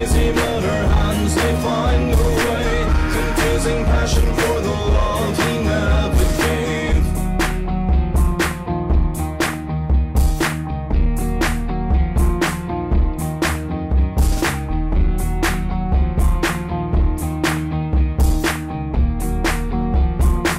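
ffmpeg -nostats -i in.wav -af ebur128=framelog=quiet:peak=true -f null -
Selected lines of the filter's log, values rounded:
Integrated loudness:
  I:         -19.2 LUFS
  Threshold: -29.2 LUFS
Loudness range:
  LRA:         2.4 LU
  Threshold: -39.3 LUFS
  LRA low:   -20.2 LUFS
  LRA high:  -17.9 LUFS
True peak:
  Peak:       -7.2 dBFS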